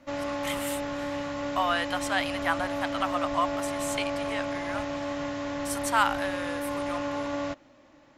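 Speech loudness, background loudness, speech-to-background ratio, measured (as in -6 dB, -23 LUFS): -31.5 LUFS, -32.0 LUFS, 0.5 dB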